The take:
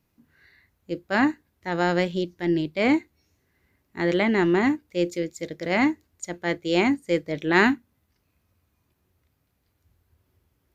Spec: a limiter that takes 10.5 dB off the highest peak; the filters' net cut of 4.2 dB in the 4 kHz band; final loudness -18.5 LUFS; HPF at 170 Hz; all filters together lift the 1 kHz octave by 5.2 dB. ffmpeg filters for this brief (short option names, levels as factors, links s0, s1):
-af "highpass=170,equalizer=f=1000:t=o:g=7,equalizer=f=4000:t=o:g=-6.5,volume=2.37,alimiter=limit=0.596:level=0:latency=1"